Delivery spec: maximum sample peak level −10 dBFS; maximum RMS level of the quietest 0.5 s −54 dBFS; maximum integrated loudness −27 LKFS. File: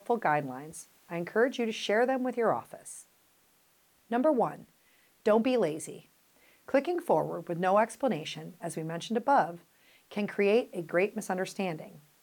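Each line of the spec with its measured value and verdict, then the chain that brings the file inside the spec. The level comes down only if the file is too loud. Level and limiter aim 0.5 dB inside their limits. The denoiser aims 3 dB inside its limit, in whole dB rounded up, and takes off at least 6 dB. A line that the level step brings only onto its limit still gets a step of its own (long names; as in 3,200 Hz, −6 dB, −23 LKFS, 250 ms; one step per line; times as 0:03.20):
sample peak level −14.5 dBFS: in spec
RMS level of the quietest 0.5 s −67 dBFS: in spec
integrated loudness −30.0 LKFS: in spec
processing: no processing needed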